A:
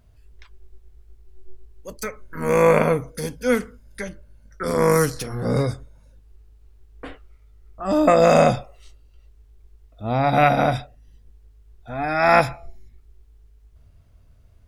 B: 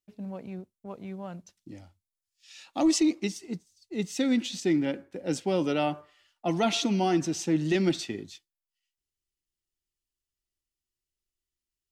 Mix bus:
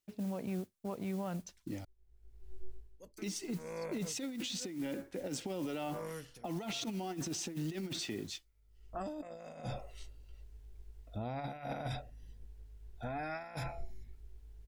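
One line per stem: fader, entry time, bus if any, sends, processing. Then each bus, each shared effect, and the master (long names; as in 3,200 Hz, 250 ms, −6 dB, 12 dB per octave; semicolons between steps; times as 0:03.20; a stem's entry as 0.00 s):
−8.0 dB, 1.15 s, no send, notch filter 1,200 Hz, Q 6.4; automatic ducking −24 dB, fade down 0.45 s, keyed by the second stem
−2.5 dB, 0.00 s, muted 0:01.85–0:03.18, no send, noise that follows the level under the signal 22 dB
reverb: not used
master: compressor whose output falls as the input rises −33 dBFS, ratio −0.5; brickwall limiter −30.5 dBFS, peak gain reduction 12 dB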